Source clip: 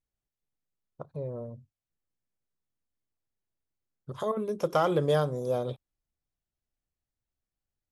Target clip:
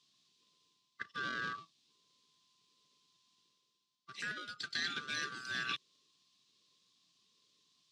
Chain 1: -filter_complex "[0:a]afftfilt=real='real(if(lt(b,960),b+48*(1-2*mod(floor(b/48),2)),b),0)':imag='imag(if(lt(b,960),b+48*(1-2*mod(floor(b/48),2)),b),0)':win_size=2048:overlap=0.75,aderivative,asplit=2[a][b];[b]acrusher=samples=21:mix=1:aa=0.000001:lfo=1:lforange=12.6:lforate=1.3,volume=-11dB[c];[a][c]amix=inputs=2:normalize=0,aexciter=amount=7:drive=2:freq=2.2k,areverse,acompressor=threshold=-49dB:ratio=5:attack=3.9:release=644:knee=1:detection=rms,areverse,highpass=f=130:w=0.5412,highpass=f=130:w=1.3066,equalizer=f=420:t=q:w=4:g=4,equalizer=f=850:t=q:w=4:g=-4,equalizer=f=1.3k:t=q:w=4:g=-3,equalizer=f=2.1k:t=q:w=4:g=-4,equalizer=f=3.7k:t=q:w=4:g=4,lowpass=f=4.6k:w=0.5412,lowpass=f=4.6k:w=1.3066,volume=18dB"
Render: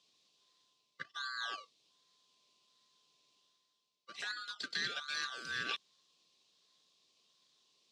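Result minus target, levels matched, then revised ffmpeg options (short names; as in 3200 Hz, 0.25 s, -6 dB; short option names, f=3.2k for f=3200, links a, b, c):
decimation with a swept rate: distortion -23 dB
-filter_complex "[0:a]afftfilt=real='real(if(lt(b,960),b+48*(1-2*mod(floor(b/48),2)),b),0)':imag='imag(if(lt(b,960),b+48*(1-2*mod(floor(b/48),2)),b),0)':win_size=2048:overlap=0.75,aderivative,asplit=2[a][b];[b]acrusher=samples=71:mix=1:aa=0.000001:lfo=1:lforange=42.6:lforate=1.3,volume=-11dB[c];[a][c]amix=inputs=2:normalize=0,aexciter=amount=7:drive=2:freq=2.2k,areverse,acompressor=threshold=-49dB:ratio=5:attack=3.9:release=644:knee=1:detection=rms,areverse,highpass=f=130:w=0.5412,highpass=f=130:w=1.3066,equalizer=f=420:t=q:w=4:g=4,equalizer=f=850:t=q:w=4:g=-4,equalizer=f=1.3k:t=q:w=4:g=-3,equalizer=f=2.1k:t=q:w=4:g=-4,equalizer=f=3.7k:t=q:w=4:g=4,lowpass=f=4.6k:w=0.5412,lowpass=f=4.6k:w=1.3066,volume=18dB"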